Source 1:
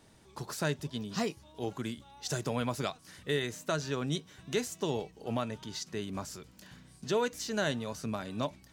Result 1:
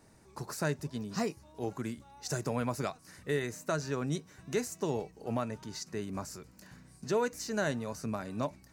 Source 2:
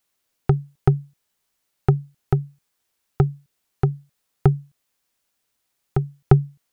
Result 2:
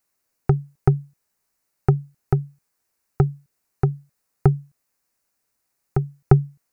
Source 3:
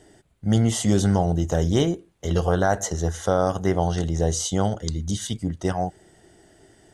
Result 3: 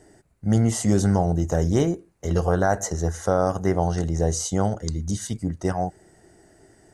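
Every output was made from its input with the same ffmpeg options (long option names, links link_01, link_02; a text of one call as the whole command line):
ffmpeg -i in.wav -af "equalizer=frequency=3300:width_type=o:width=0.45:gain=-13" out.wav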